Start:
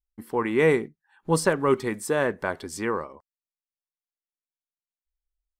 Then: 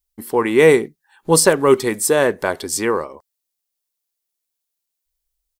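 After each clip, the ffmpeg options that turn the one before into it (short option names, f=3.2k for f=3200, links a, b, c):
-af "firequalizer=gain_entry='entry(190,0);entry(400,5);entry(1300,1);entry(4100,9);entry(13000,14)':delay=0.05:min_phase=1,volume=4.5dB"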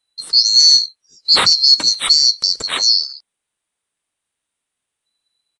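-af "afftfilt=real='real(if(lt(b,736),b+184*(1-2*mod(floor(b/184),2)),b),0)':imag='imag(if(lt(b,736),b+184*(1-2*mod(floor(b/184),2)),b),0)':win_size=2048:overlap=0.75,aresample=22050,aresample=44100,alimiter=limit=-6.5dB:level=0:latency=1:release=13,volume=5dB"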